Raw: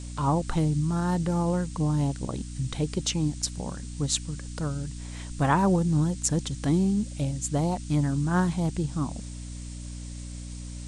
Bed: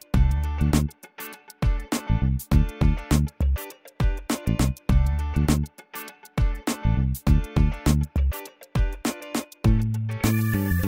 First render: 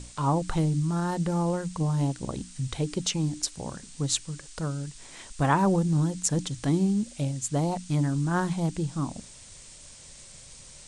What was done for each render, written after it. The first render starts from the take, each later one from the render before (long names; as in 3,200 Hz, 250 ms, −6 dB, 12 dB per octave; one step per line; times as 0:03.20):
mains-hum notches 60/120/180/240/300 Hz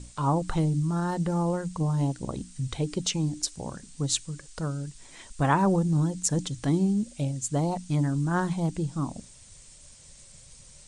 broadband denoise 6 dB, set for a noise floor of −48 dBFS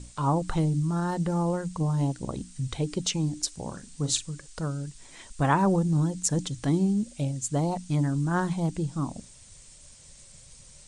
0:03.65–0:04.29: double-tracking delay 40 ms −10 dB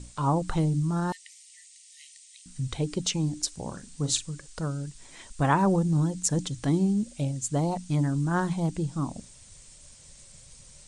0:01.12–0:02.46: linear-phase brick-wall high-pass 1,800 Hz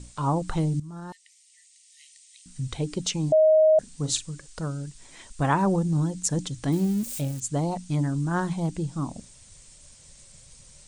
0:00.80–0:02.61: fade in, from −14 dB
0:03.32–0:03.79: beep over 627 Hz −14 dBFS
0:06.72–0:07.40: spike at every zero crossing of −28.5 dBFS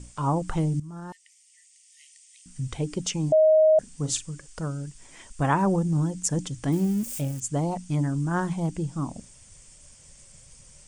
parametric band 4,000 Hz −10.5 dB 0.24 octaves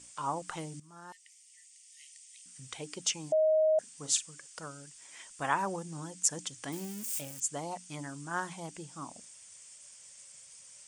high-pass filter 1,500 Hz 6 dB per octave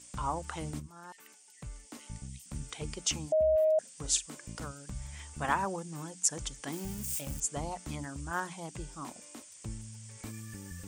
mix in bed −22 dB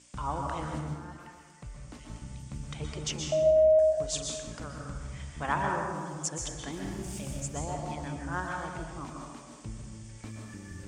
high-frequency loss of the air 71 metres
dense smooth reverb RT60 1.4 s, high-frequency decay 0.55×, pre-delay 110 ms, DRR 0.5 dB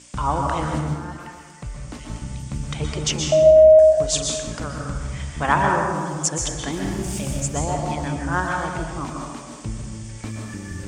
level +11 dB